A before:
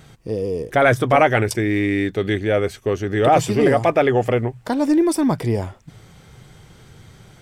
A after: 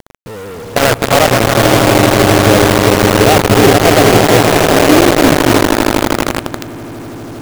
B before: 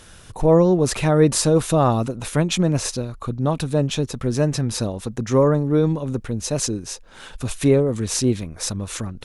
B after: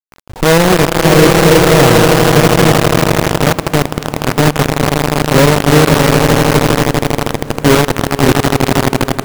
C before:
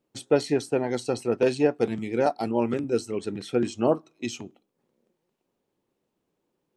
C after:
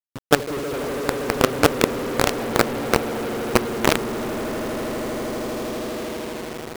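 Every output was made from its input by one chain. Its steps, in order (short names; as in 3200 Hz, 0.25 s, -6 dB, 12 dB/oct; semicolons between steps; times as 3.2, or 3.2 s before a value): Gaussian blur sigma 7.4 samples; swelling echo 80 ms, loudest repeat 8, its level -8 dB; companded quantiser 2-bit; gain -1 dB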